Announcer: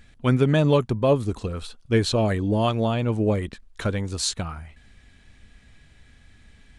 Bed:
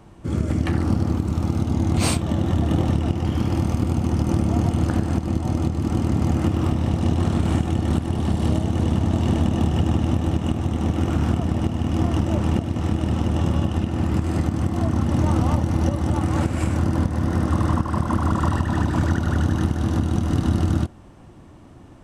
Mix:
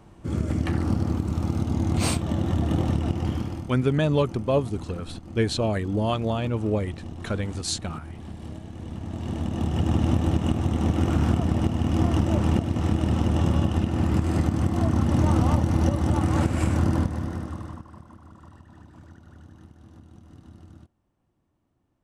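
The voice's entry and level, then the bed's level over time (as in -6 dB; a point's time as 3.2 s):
3.45 s, -3.0 dB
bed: 3.3 s -3.5 dB
3.74 s -17 dB
8.77 s -17 dB
10.02 s -1 dB
16.93 s -1 dB
18.19 s -27.5 dB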